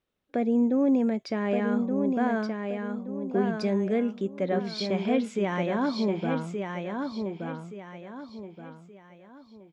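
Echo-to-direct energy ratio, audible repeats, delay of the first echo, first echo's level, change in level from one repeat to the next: -4.5 dB, 4, 1.174 s, -5.0 dB, -9.0 dB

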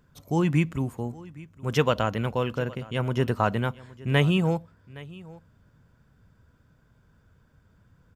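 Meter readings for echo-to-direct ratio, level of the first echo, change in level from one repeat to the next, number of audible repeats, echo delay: -20.5 dB, -20.5 dB, no steady repeat, 1, 0.816 s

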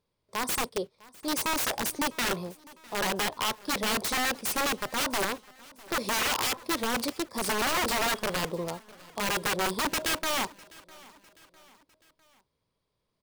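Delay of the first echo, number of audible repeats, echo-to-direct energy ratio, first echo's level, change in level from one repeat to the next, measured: 0.653 s, 2, -21.5 dB, -22.5 dB, -6.5 dB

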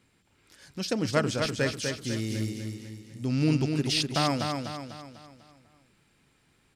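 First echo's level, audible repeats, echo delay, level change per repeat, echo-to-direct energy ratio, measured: -5.0 dB, 5, 0.248 s, -6.5 dB, -4.0 dB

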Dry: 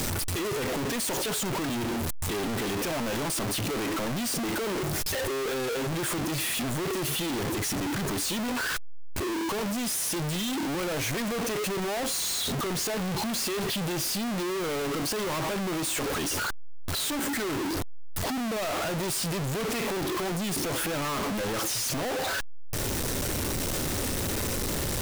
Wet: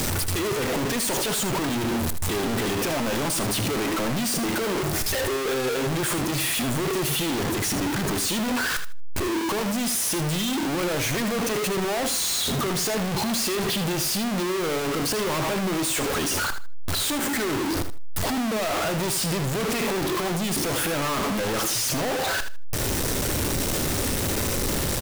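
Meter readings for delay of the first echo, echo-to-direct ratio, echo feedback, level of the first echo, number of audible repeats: 78 ms, -10.0 dB, 19%, -10.0 dB, 2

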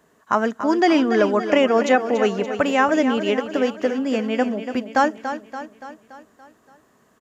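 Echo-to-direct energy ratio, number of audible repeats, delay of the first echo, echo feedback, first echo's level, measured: -8.5 dB, 5, 0.286 s, 55%, -10.0 dB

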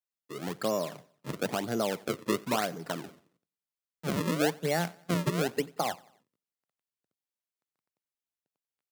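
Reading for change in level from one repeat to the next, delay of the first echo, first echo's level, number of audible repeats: -6.0 dB, 91 ms, -24.0 dB, 2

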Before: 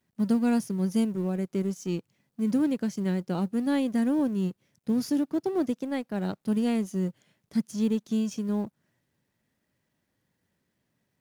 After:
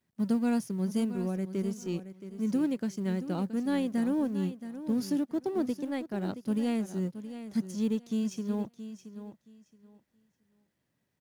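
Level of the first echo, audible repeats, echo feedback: -12.0 dB, 2, 20%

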